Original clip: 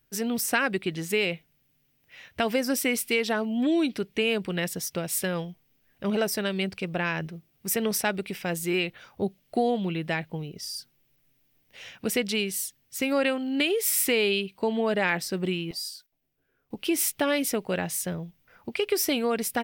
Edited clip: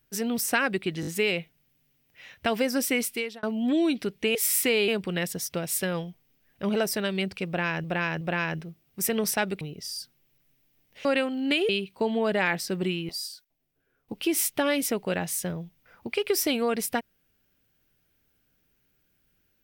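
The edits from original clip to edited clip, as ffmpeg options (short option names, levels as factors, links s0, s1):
-filter_complex "[0:a]asplit=12[s0][s1][s2][s3][s4][s5][s6][s7][s8][s9][s10][s11];[s0]atrim=end=1.032[s12];[s1]atrim=start=1.008:end=1.032[s13];[s2]atrim=start=1.008:end=1.032[s14];[s3]atrim=start=1.008:end=3.37,asetpts=PTS-STARTPTS,afade=t=out:st=1.942:d=0.42[s15];[s4]atrim=start=3.37:end=4.292,asetpts=PTS-STARTPTS,afade=t=in:d=0.004:c=hsin[s16];[s5]atrim=start=13.778:end=14.312[s17];[s6]atrim=start=4.288:end=7.252[s18];[s7]atrim=start=6.878:end=7.252[s19];[s8]atrim=start=6.878:end=8.282[s20];[s9]atrim=start=10.388:end=11.832[s21];[s10]atrim=start=13.138:end=13.782[s22];[s11]atrim=start=14.308[s23];[s12][s13]acrossfade=d=0.004:c1=hsin:c2=hsin[s24];[s24][s14]acrossfade=d=0.004:c1=hsin:c2=hsin[s25];[s15][s16]concat=n=2:v=0:a=1[s26];[s25][s26]acrossfade=d=0.004:c1=hsin:c2=hsin[s27];[s27][s17]acrossfade=d=0.004:c1=hsin:c2=hsin[s28];[s28][s18]acrossfade=d=0.004:c1=hsin:c2=hsin[s29];[s29][s19]acrossfade=d=0.004:c1=hsin:c2=hsin[s30];[s30][s20]acrossfade=d=0.004:c1=hsin:c2=hsin[s31];[s31][s21]acrossfade=d=0.004:c1=hsin:c2=hsin[s32];[s32][s22]acrossfade=d=0.004:c1=hsin:c2=hsin[s33];[s33][s23]acrossfade=d=0.004:c1=hsin:c2=hsin"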